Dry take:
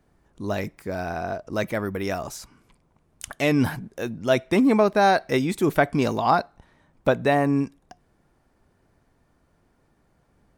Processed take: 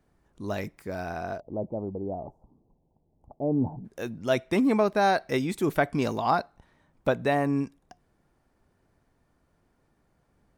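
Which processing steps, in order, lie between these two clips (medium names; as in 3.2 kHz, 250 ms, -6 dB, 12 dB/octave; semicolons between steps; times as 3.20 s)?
1.40–3.85 s: elliptic low-pass 850 Hz, stop band 50 dB; trim -4.5 dB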